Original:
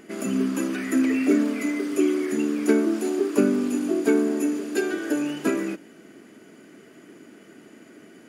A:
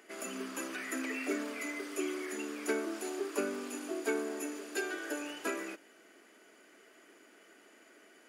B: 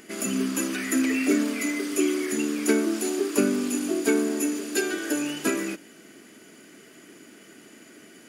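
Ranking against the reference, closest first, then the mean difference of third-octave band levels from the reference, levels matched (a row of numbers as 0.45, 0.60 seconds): B, A; 4.0, 7.5 decibels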